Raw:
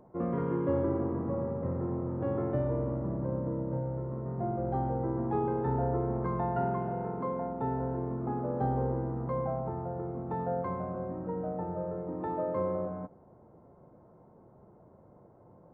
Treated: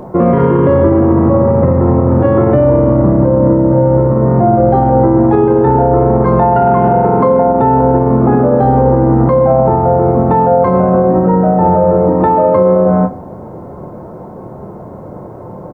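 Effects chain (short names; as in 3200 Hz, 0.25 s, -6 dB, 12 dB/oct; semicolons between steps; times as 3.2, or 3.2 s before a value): doubler 27 ms -10 dB; reverb RT60 0.60 s, pre-delay 5 ms, DRR 10.5 dB; maximiser +28.5 dB; gain -1 dB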